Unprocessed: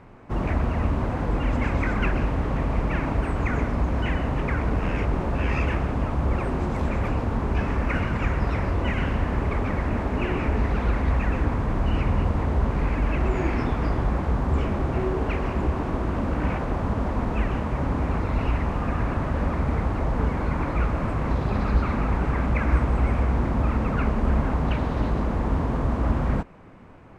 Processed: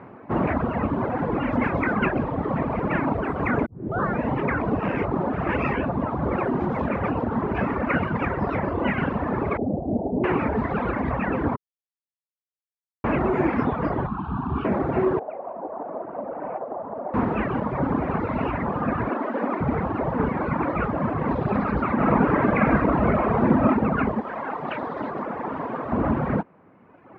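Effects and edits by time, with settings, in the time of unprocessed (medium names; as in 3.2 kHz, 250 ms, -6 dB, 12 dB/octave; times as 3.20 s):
3.66 s: tape start 0.62 s
5.29–5.95 s: reverse
9.57–10.24 s: elliptic low-pass 740 Hz, stop band 70 dB
11.56–13.04 s: mute
14.07–14.65 s: static phaser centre 2 kHz, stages 6
15.19–17.14 s: band-pass filter 650 Hz, Q 2.6
19.09–19.61 s: steep high-pass 210 Hz 48 dB/octave
21.93–23.67 s: reverb throw, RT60 1.6 s, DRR -2 dB
24.21–25.92 s: high-pass 600 Hz 6 dB/octave
whole clip: high-pass 160 Hz 12 dB/octave; reverb removal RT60 1.6 s; low-pass 1.8 kHz 12 dB/octave; trim +8 dB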